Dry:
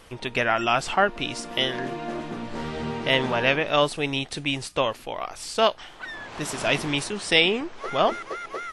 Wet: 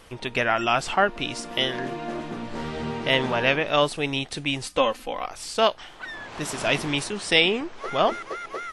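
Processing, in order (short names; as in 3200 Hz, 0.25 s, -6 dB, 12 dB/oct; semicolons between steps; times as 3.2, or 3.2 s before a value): 4.63–5.26 comb 3.9 ms, depth 71%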